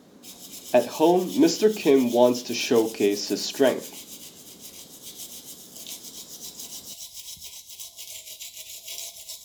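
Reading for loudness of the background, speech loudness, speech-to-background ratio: -38.0 LUFS, -22.0 LUFS, 16.0 dB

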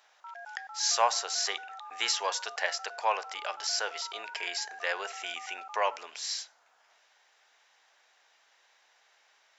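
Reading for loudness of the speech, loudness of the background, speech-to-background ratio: -31.5 LUFS, -45.0 LUFS, 13.5 dB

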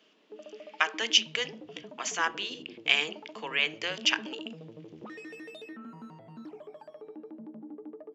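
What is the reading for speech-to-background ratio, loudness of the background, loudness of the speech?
17.5 dB, -46.0 LUFS, -28.5 LUFS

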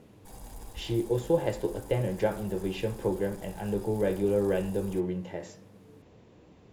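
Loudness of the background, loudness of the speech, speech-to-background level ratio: -49.0 LUFS, -30.5 LUFS, 18.5 dB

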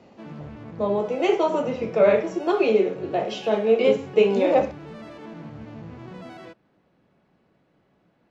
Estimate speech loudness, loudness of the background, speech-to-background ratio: -22.0 LUFS, -40.5 LUFS, 18.5 dB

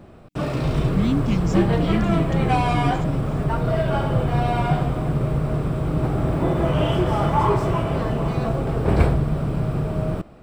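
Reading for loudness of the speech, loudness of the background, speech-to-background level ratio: -25.5 LUFS, -22.0 LUFS, -3.5 dB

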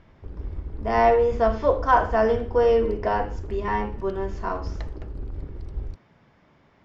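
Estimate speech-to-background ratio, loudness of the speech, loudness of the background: 13.5 dB, -23.0 LUFS, -36.5 LUFS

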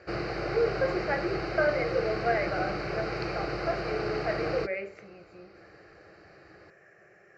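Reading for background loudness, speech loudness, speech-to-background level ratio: -33.5 LUFS, -32.0 LUFS, 1.5 dB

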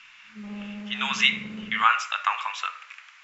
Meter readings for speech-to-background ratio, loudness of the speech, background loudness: 15.0 dB, -24.5 LUFS, -39.5 LUFS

